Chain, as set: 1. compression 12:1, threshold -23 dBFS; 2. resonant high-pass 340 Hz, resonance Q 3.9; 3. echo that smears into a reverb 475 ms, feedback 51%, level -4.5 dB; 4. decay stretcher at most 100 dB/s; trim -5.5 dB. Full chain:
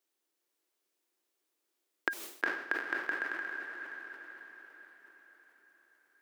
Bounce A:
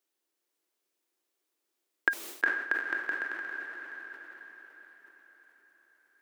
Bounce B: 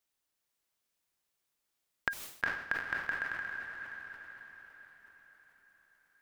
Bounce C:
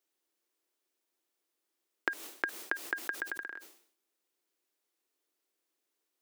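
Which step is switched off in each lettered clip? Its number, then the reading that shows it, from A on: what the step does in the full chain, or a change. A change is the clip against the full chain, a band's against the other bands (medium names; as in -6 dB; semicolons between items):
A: 1, mean gain reduction 2.5 dB; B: 2, 250 Hz band -6.5 dB; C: 3, momentary loudness spread change -9 LU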